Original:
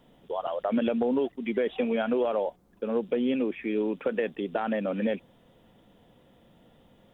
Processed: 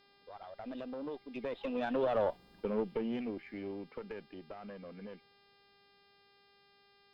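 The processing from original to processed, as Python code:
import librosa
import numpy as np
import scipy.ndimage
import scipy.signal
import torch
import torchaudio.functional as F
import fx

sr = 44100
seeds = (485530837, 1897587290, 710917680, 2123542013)

y = fx.diode_clip(x, sr, knee_db=-24.5)
y = fx.doppler_pass(y, sr, speed_mps=29, closest_m=8.9, pass_at_s=2.36)
y = fx.dmg_buzz(y, sr, base_hz=400.0, harmonics=13, level_db=-67.0, tilt_db=-2, odd_only=False)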